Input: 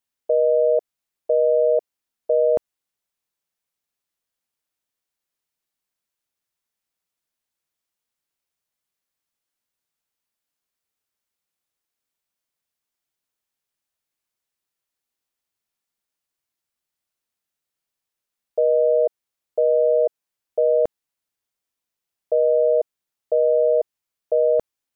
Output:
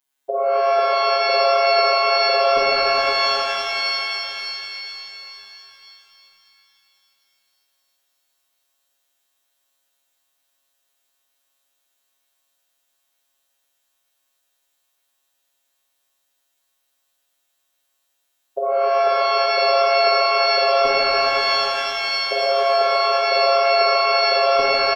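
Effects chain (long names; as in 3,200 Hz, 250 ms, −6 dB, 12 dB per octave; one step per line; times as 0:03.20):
parametric band 110 Hz −13 dB 1.6 octaves
mains-hum notches 60/120/180/240/300/360/420/480 Hz
phases set to zero 137 Hz
repeating echo 260 ms, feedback 55%, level −9 dB
reverb with rising layers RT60 3.6 s, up +12 semitones, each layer −2 dB, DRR −6.5 dB
level +6.5 dB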